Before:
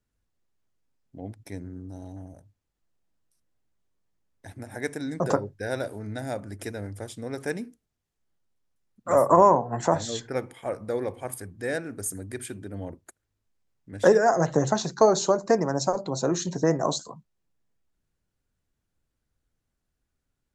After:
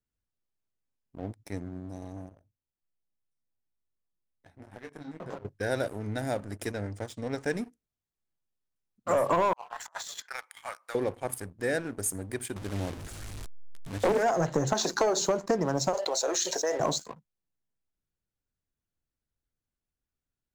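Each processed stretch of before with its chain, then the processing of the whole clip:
0:02.29–0:05.45: low-pass filter 2,100 Hz 6 dB per octave + downward compressor 3 to 1, threshold −35 dBFS + micro pitch shift up and down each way 21 cents
0:06.72–0:07.54: low-pass filter 8,100 Hz 24 dB per octave + notch filter 370 Hz, Q 8.3
0:09.53–0:10.95: high-pass filter 1,000 Hz 24 dB per octave + compressor whose output falls as the input rises −39 dBFS, ratio −0.5
0:12.56–0:14.23: linear delta modulator 64 kbit/s, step −35 dBFS + low-shelf EQ 110 Hz +6 dB + highs frequency-modulated by the lows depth 0.58 ms
0:14.73–0:15.20: high-pass filter 260 Hz 24 dB per octave + upward compression, threshold −19 dBFS
0:15.94–0:16.80: high-pass filter 540 Hz 24 dB per octave + parametric band 1,100 Hz −7.5 dB 1.2 octaves + envelope flattener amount 70%
whole clip: leveller curve on the samples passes 2; downward compressor 5 to 1, threshold −16 dBFS; level −6.5 dB

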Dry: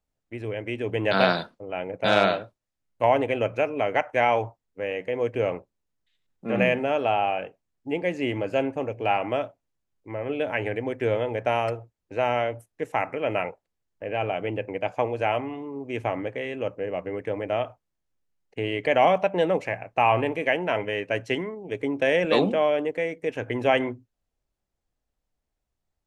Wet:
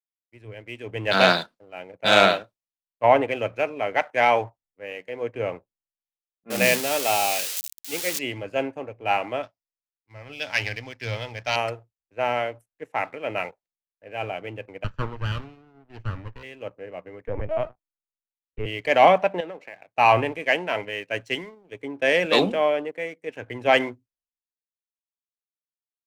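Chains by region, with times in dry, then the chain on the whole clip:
0:06.50–0:08.19: spike at every zero crossing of −15 dBFS + high-shelf EQ 4,200 Hz −8 dB + mains-hum notches 60/120/180 Hz
0:09.43–0:11.56: parametric band 400 Hz −10.5 dB 1.5 octaves + leveller curve on the samples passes 1 + low-pass with resonance 5,200 Hz, resonance Q 5
0:14.84–0:16.43: lower of the sound and its delayed copy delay 0.69 ms + high-frequency loss of the air 130 metres
0:17.27–0:18.66: leveller curve on the samples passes 1 + high-shelf EQ 3,100 Hz −7.5 dB + linear-prediction vocoder at 8 kHz pitch kept
0:19.40–0:19.88: downward compressor 5 to 1, threshold −27 dBFS + band-pass filter 190–4,900 Hz
whole clip: tilt shelving filter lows −3.5 dB, about 1,200 Hz; leveller curve on the samples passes 1; multiband upward and downward expander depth 100%; level −3.5 dB

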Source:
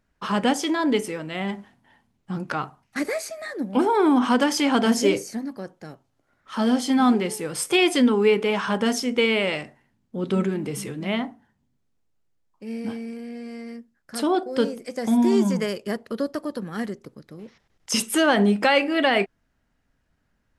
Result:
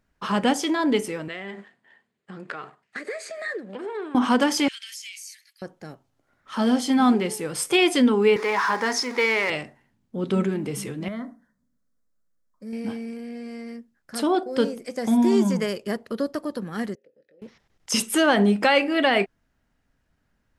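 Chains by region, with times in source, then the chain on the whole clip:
0:01.28–0:04.15: leveller curve on the samples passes 1 + downward compressor 12 to 1, threshold −30 dBFS + loudspeaker in its box 240–8,300 Hz, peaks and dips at 270 Hz −8 dB, 430 Hz +6 dB, 860 Hz −7 dB, 1,800 Hz +7 dB, 5,800 Hz −9 dB
0:04.68–0:05.62: Butterworth high-pass 2,100 Hz + downward compressor, threshold −35 dBFS
0:08.36–0:09.50: converter with a step at zero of −30.5 dBFS + loudspeaker in its box 410–9,900 Hz, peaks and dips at 590 Hz −7 dB, 970 Hz +7 dB, 1,900 Hz +8 dB, 3,000 Hz −10 dB, 5,000 Hz +4 dB, 8,200 Hz −7 dB + log-companded quantiser 8 bits
0:11.08–0:12.73: downward compressor 2 to 1, threshold −31 dBFS + phaser with its sweep stopped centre 550 Hz, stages 8
0:16.95–0:17.42: double-tracking delay 22 ms −8.5 dB + downward compressor 2 to 1, threshold −44 dBFS + formant filter e
whole clip: no processing

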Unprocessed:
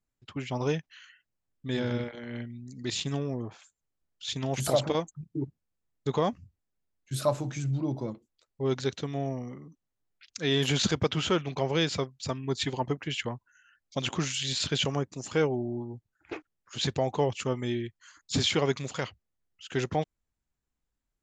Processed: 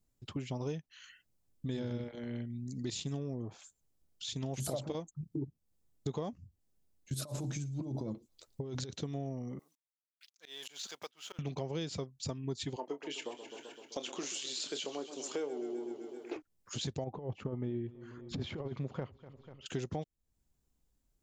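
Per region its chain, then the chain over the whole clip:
0:07.14–0:08.90: compressor whose output falls as the input rises −36 dBFS + delay with a high-pass on its return 112 ms, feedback 46%, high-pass 3,300 Hz, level −23 dB
0:09.59–0:11.39: mu-law and A-law mismatch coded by A + high-pass filter 960 Hz + volume swells 668 ms
0:12.76–0:16.36: high-pass filter 310 Hz 24 dB per octave + double-tracking delay 28 ms −10.5 dB + feedback echo with a swinging delay time 129 ms, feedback 65%, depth 95 cents, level −14.5 dB
0:17.04–0:19.66: low-pass filter 1,500 Hz + compressor whose output falls as the input rises −30 dBFS, ratio −0.5 + repeating echo 245 ms, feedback 55%, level −23 dB
whole clip: downward compressor 3 to 1, threshold −46 dBFS; parametric band 1,700 Hz −9.5 dB 2.3 octaves; level +8 dB

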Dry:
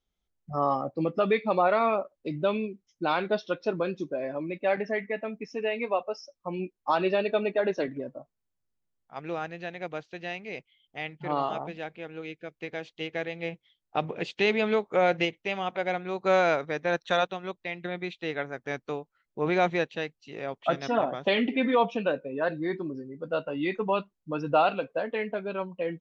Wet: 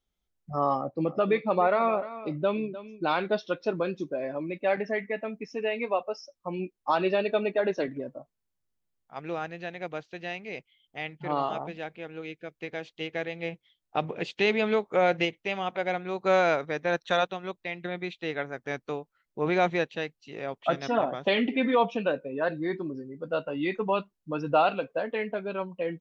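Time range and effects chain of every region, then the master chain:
0:00.78–0:03.04: high-shelf EQ 3,600 Hz −8 dB + single-tap delay 302 ms −14.5 dB
whole clip: no processing

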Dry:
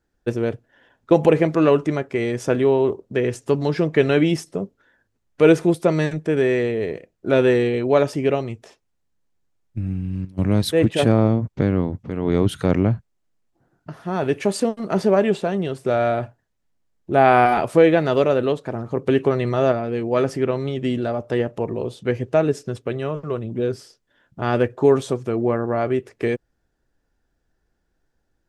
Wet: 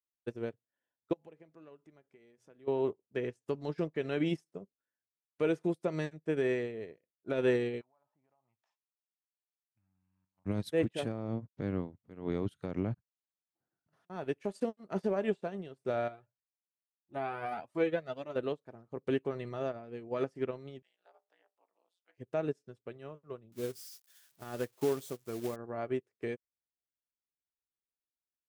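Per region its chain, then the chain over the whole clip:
0:01.13–0:02.68: downward compressor 3 to 1, threshold −30 dBFS + mains-hum notches 60/120/180 Hz
0:07.81–0:10.46: treble cut that deepens with the level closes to 790 Hz, closed at −19 dBFS + low shelf with overshoot 610 Hz −13 dB, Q 3 + downward compressor 4 to 1, threshold −37 dBFS
0:12.94–0:14.10: compressor whose output falls as the input rises −39 dBFS, ratio −0.5 + one half of a high-frequency compander encoder only
0:16.08–0:18.36: high-pass filter 56 Hz + flanger whose copies keep moving one way rising 1.8 Hz
0:20.82–0:22.18: Butterworth high-pass 620 Hz + amplitude modulation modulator 180 Hz, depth 100%
0:23.52–0:25.56: spike at every zero crossing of −21.5 dBFS + floating-point word with a short mantissa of 2 bits
whole clip: high-pass filter 90 Hz 6 dB per octave; brickwall limiter −11 dBFS; expander for the loud parts 2.5 to 1, over −35 dBFS; level −7.5 dB

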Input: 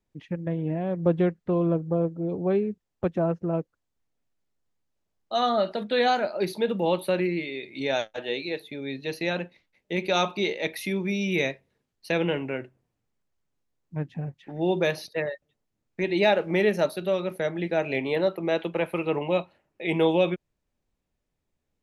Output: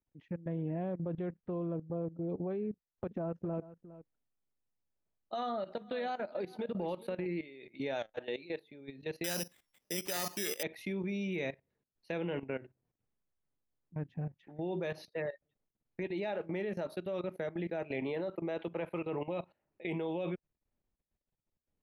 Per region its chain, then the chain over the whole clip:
0:02.70–0:07.26: downward compressor 10 to 1, threshold −26 dBFS + single-tap delay 409 ms −15 dB
0:09.24–0:10.63: high-shelf EQ 5,400 Hz +12 dB + bad sample-rate conversion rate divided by 8×, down none, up zero stuff
whole clip: high-shelf EQ 3,500 Hz −11.5 dB; output level in coarse steps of 16 dB; level −3.5 dB

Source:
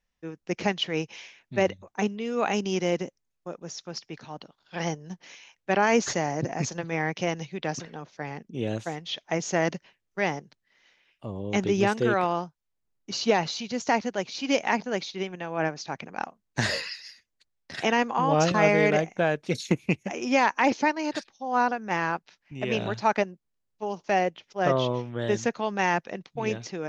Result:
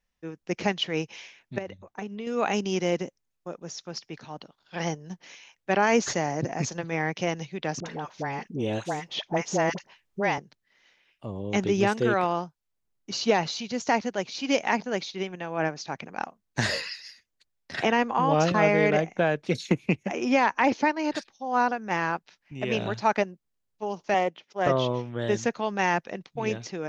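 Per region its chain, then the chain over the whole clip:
0:01.58–0:02.27: high-shelf EQ 5,800 Hz −8.5 dB + downward compressor 12 to 1, threshold −30 dBFS
0:07.80–0:10.38: parametric band 930 Hz +6 dB 0.7 octaves + all-pass dispersion highs, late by 58 ms, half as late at 820 Hz + multiband upward and downward compressor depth 40%
0:17.74–0:21.14: high-shelf EQ 7,300 Hz −12 dB + multiband upward and downward compressor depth 40%
0:24.14–0:24.67: high-pass filter 170 Hz + high-shelf EQ 4,400 Hz −4.5 dB + highs frequency-modulated by the lows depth 0.12 ms
whole clip: no processing

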